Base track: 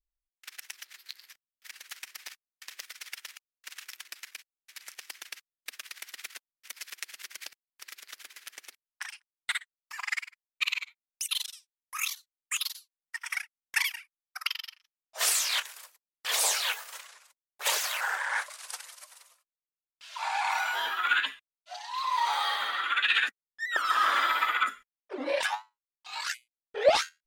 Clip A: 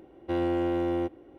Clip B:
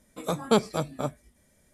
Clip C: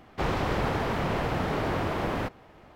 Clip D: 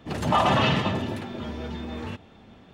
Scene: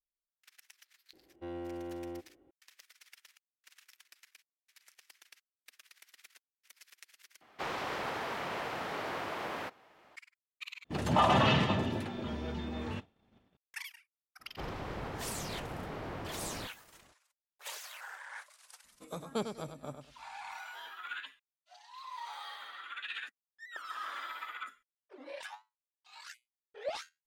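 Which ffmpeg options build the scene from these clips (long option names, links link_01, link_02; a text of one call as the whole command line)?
ffmpeg -i bed.wav -i cue0.wav -i cue1.wav -i cue2.wav -i cue3.wav -filter_complex "[3:a]asplit=2[link_01][link_02];[0:a]volume=-16dB[link_03];[link_01]highpass=frequency=870:poles=1[link_04];[4:a]agate=range=-33dB:threshold=-41dB:ratio=3:release=100:detection=peak[link_05];[2:a]aecho=1:1:100|200|300:0.398|0.0916|0.0211[link_06];[link_03]asplit=3[link_07][link_08][link_09];[link_07]atrim=end=7.414[link_10];[link_04]atrim=end=2.75,asetpts=PTS-STARTPTS,volume=-4dB[link_11];[link_08]atrim=start=10.156:end=10.844[link_12];[link_05]atrim=end=2.73,asetpts=PTS-STARTPTS,volume=-4.5dB[link_13];[link_09]atrim=start=13.566[link_14];[1:a]atrim=end=1.38,asetpts=PTS-STARTPTS,volume=-14dB,afade=type=in:duration=0.004:curve=hsin,afade=type=out:start_time=1.376:duration=0.004:curve=hsin,adelay=1130[link_15];[link_02]atrim=end=2.75,asetpts=PTS-STARTPTS,volume=-13dB,afade=type=in:duration=0.02,afade=type=out:start_time=2.73:duration=0.02,adelay=14390[link_16];[link_06]atrim=end=1.73,asetpts=PTS-STARTPTS,volume=-13.5dB,afade=type=in:duration=0.004:curve=hsin,afade=type=out:start_time=1.726:duration=0.004:curve=hsin,adelay=18840[link_17];[link_10][link_11]acrossfade=duration=0.004:curve1=hsin:curve2=hsin[link_18];[link_18][link_12]acrossfade=duration=0.004:curve1=hsin:curve2=hsin[link_19];[link_19][link_13]acrossfade=duration=0.004:curve1=hsin:curve2=hsin[link_20];[link_20][link_14]acrossfade=duration=0.004:curve1=hsin:curve2=hsin[link_21];[link_21][link_15][link_16][link_17]amix=inputs=4:normalize=0" out.wav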